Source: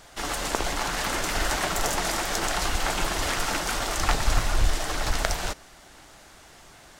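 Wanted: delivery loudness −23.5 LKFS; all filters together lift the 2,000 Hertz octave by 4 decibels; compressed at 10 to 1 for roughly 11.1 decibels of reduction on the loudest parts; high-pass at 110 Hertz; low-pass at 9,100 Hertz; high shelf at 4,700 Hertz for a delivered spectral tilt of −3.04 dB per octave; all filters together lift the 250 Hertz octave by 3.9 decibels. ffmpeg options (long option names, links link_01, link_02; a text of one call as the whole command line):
ffmpeg -i in.wav -af "highpass=110,lowpass=9100,equalizer=frequency=250:width_type=o:gain=5.5,equalizer=frequency=2000:width_type=o:gain=6.5,highshelf=frequency=4700:gain=-9,acompressor=threshold=-32dB:ratio=10,volume=11.5dB" out.wav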